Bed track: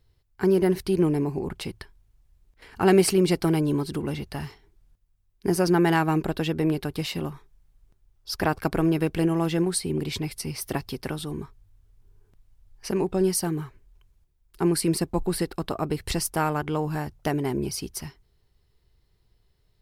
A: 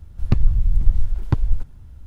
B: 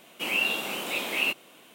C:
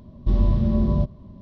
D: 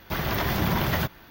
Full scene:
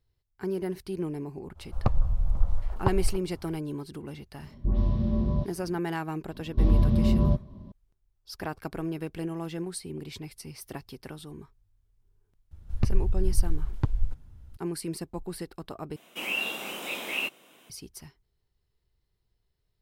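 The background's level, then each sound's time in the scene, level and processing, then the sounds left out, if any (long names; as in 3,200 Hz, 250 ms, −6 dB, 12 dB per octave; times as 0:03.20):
bed track −10.5 dB
0:01.54: mix in A −8 dB, fades 0.05 s + flat-topped bell 800 Hz +14 dB
0:04.38: mix in C −6 dB + all-pass dispersion highs, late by 126 ms, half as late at 1,900 Hz
0:06.31: mix in C −2 dB + stylus tracing distortion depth 0.029 ms
0:12.51: mix in A −7.5 dB
0:15.96: overwrite with B −4 dB + notch filter 4,400 Hz, Q 9.9
not used: D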